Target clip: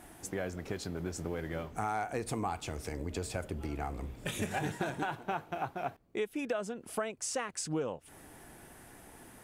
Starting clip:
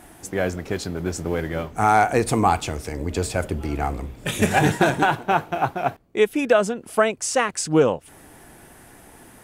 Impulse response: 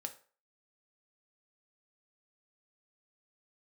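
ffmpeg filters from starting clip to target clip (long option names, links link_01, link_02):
-af "acompressor=threshold=-28dB:ratio=3,volume=-6.5dB"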